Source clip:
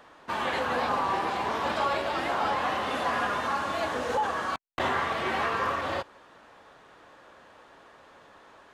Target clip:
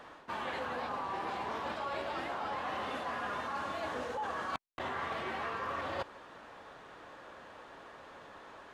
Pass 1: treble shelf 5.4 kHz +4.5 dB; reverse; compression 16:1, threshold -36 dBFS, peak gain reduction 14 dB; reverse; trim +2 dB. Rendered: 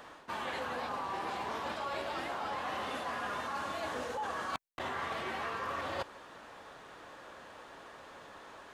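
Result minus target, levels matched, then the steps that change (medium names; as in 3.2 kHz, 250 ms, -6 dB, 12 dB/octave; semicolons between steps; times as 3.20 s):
8 kHz band +5.5 dB
change: treble shelf 5.4 kHz -4.5 dB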